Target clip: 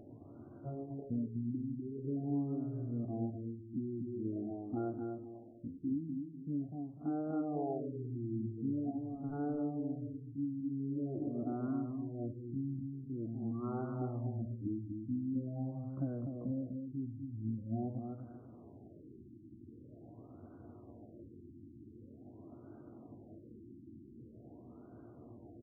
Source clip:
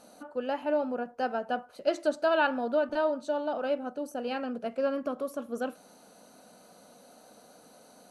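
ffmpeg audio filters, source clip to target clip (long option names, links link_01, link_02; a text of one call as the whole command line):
ffmpeg -i in.wav -filter_complex "[0:a]aexciter=amount=10.9:drive=2.3:freq=4400,acompressor=threshold=-44dB:ratio=5,asetrate=20815,aresample=44100,bandreject=frequency=426.6:width_type=h:width=4,bandreject=frequency=853.2:width_type=h:width=4,bandreject=frequency=1279.8:width_type=h:width=4,atempo=0.67,asplit=2[link_01][link_02];[link_02]adelay=249,lowpass=frequency=2000:poles=1,volume=-5dB,asplit=2[link_03][link_04];[link_04]adelay=249,lowpass=frequency=2000:poles=1,volume=0.32,asplit=2[link_05][link_06];[link_06]adelay=249,lowpass=frequency=2000:poles=1,volume=0.32,asplit=2[link_07][link_08];[link_08]adelay=249,lowpass=frequency=2000:poles=1,volume=0.32[link_09];[link_03][link_05][link_07][link_09]amix=inputs=4:normalize=0[link_10];[link_01][link_10]amix=inputs=2:normalize=0,afftfilt=real='re*lt(b*sr/1024,360*pow(1600/360,0.5+0.5*sin(2*PI*0.45*pts/sr)))':imag='im*lt(b*sr/1024,360*pow(1600/360,0.5+0.5*sin(2*PI*0.45*pts/sr)))':win_size=1024:overlap=0.75,volume=6dB" out.wav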